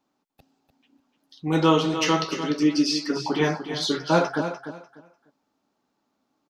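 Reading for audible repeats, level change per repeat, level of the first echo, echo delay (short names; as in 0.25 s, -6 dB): 2, -13.0 dB, -10.0 dB, 0.297 s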